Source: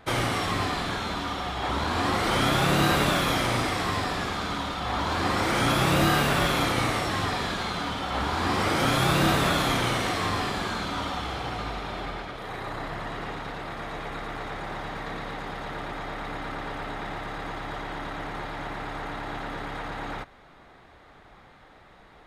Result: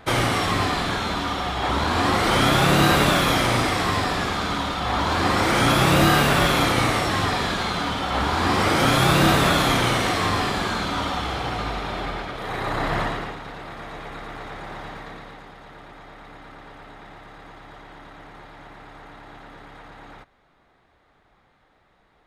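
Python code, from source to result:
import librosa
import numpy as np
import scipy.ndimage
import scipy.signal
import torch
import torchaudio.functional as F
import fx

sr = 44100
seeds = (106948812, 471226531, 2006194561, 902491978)

y = fx.gain(x, sr, db=fx.line((12.34, 5.0), (13.0, 11.0), (13.38, -1.0), (14.88, -1.0), (15.54, -9.0)))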